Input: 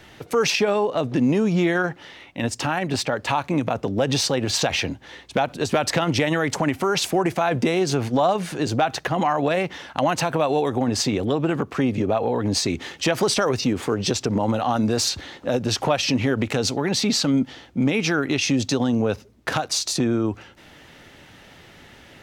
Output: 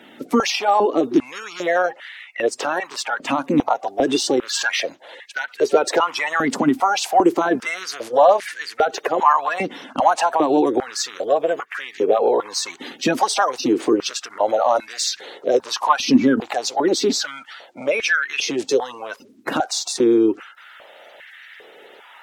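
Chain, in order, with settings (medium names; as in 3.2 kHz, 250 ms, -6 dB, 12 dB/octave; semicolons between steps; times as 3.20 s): coarse spectral quantiser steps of 30 dB; step-sequenced high-pass 2.5 Hz 250–1800 Hz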